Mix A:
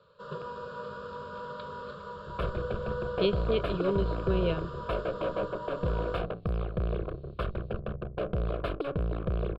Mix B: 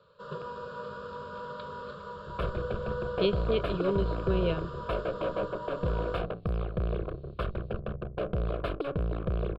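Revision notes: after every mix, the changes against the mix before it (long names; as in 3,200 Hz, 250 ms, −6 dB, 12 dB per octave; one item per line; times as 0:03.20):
nothing changed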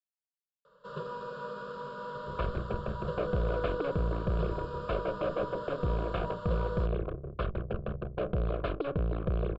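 speech: muted
first sound: entry +0.65 s
second sound: add high-frequency loss of the air 120 metres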